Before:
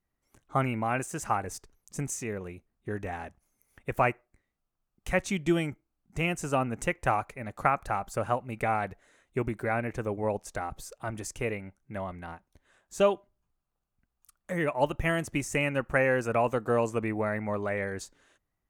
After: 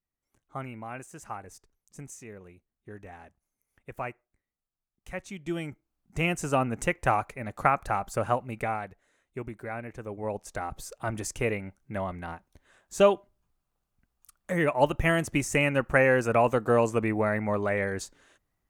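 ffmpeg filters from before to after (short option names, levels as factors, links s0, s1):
-af "volume=4.22,afade=t=in:st=5.39:d=0.85:silence=0.251189,afade=t=out:st=8.4:d=0.48:silence=0.354813,afade=t=in:st=10.03:d=1.04:silence=0.298538"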